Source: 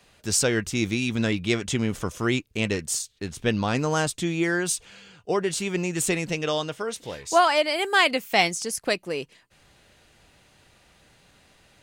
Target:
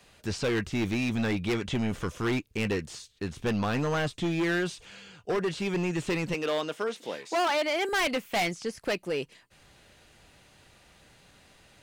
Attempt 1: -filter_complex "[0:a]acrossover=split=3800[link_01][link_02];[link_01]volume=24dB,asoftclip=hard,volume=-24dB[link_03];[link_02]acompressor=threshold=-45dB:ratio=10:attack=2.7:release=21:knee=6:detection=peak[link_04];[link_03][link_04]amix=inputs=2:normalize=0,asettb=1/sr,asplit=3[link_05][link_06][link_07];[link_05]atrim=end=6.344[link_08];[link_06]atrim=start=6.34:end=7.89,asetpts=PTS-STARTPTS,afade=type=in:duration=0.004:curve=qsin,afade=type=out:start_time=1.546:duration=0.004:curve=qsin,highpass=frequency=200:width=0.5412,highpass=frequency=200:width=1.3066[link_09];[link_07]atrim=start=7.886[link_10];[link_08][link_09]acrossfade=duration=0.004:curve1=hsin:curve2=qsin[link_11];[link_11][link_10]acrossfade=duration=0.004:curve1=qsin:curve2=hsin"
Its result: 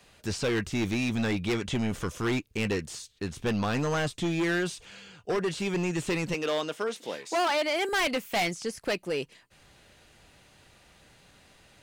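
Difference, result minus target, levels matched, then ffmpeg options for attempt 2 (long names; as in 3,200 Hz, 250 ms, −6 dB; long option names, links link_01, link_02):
downward compressor: peak gain reduction −7 dB
-filter_complex "[0:a]acrossover=split=3800[link_01][link_02];[link_01]volume=24dB,asoftclip=hard,volume=-24dB[link_03];[link_02]acompressor=threshold=-52.5dB:ratio=10:attack=2.7:release=21:knee=6:detection=peak[link_04];[link_03][link_04]amix=inputs=2:normalize=0,asettb=1/sr,asplit=3[link_05][link_06][link_07];[link_05]atrim=end=6.344[link_08];[link_06]atrim=start=6.34:end=7.89,asetpts=PTS-STARTPTS,afade=type=in:duration=0.004:curve=qsin,afade=type=out:start_time=1.546:duration=0.004:curve=qsin,highpass=frequency=200:width=0.5412,highpass=frequency=200:width=1.3066[link_09];[link_07]atrim=start=7.886[link_10];[link_08][link_09]acrossfade=duration=0.004:curve1=hsin:curve2=qsin[link_11];[link_11][link_10]acrossfade=duration=0.004:curve1=qsin:curve2=hsin"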